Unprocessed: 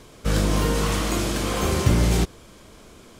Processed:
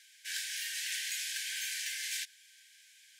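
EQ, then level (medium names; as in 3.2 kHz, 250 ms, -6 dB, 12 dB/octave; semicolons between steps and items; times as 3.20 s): brick-wall FIR high-pass 1.5 kHz; -5.5 dB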